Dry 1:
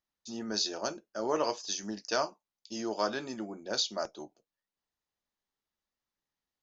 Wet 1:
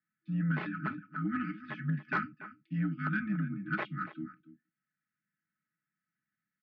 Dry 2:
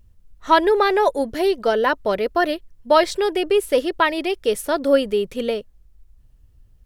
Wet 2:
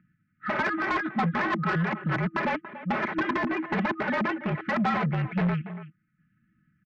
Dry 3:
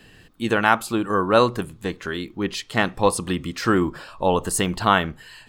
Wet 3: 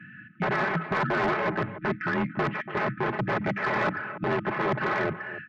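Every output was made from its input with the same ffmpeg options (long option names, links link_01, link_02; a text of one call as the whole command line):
ffmpeg -i in.wav -af "afftfilt=real='re*(1-between(b*sr/4096,380,1300))':imag='im*(1-between(b*sr/4096,380,1300))':win_size=4096:overlap=0.75,aeval=exprs='(mod(15*val(0)+1,2)-1)/15':channel_layout=same,aecho=1:1:4.5:0.69,aecho=1:1:285:0.158,highpass=frequency=210:width_type=q:width=0.5412,highpass=frequency=210:width_type=q:width=1.307,lowpass=frequency=2100:width_type=q:width=0.5176,lowpass=frequency=2100:width_type=q:width=0.7071,lowpass=frequency=2100:width_type=q:width=1.932,afreqshift=-57,asoftclip=type=tanh:threshold=-26.5dB,volume=7dB" out.wav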